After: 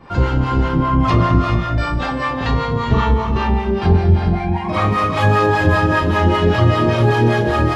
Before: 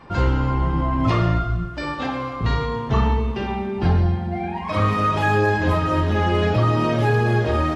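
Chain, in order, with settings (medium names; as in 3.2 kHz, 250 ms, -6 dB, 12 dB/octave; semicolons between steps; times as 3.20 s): gated-style reverb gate 460 ms rising, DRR 2 dB; harmonic tremolo 5.1 Hz, depth 70%, crossover 580 Hz; trim +6 dB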